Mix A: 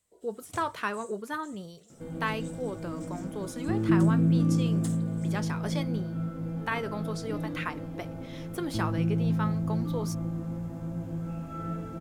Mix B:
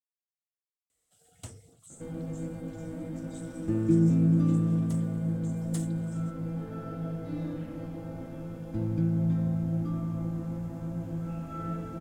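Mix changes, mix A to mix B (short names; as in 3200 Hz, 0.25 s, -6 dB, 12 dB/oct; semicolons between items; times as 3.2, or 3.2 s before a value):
speech: muted; first sound: entry +0.90 s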